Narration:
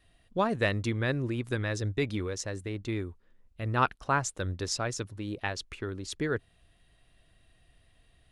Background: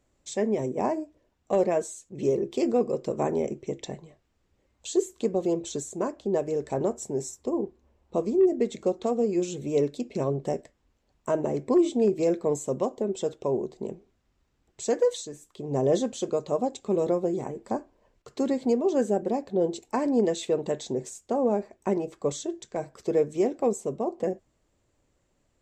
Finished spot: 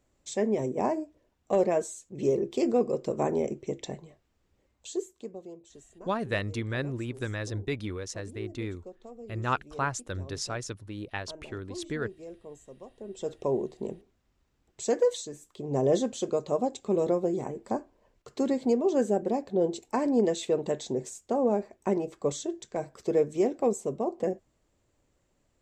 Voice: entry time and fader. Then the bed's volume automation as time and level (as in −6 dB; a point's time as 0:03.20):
5.70 s, −2.5 dB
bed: 0:04.64 −1 dB
0:05.56 −20 dB
0:12.90 −20 dB
0:13.35 −1 dB